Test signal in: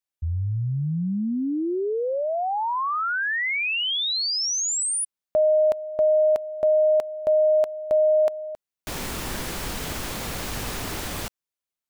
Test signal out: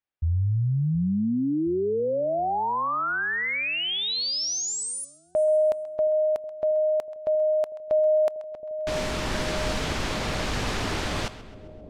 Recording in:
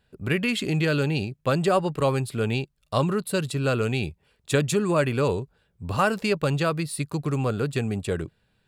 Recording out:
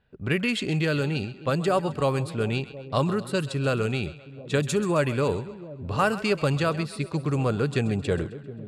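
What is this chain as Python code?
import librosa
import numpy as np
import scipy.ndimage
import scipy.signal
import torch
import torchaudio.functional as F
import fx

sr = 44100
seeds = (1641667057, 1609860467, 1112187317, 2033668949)

y = fx.echo_split(x, sr, split_hz=610.0, low_ms=720, high_ms=132, feedback_pct=52, wet_db=-15.0)
y = fx.env_lowpass(y, sr, base_hz=2800.0, full_db=-18.0)
y = fx.rider(y, sr, range_db=5, speed_s=2.0)
y = F.gain(torch.from_numpy(y), -1.5).numpy()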